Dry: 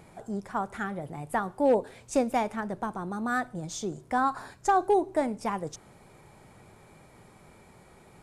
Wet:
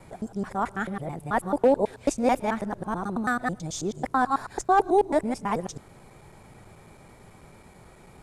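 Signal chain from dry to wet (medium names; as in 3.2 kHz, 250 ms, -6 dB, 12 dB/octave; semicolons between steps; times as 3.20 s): time reversed locally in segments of 109 ms; bass shelf 66 Hz +7 dB; trim +3 dB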